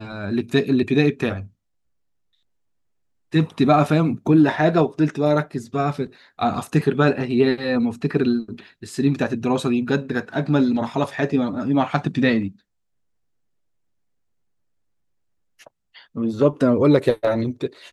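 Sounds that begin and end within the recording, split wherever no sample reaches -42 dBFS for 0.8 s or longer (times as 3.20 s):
3.32–12.52 s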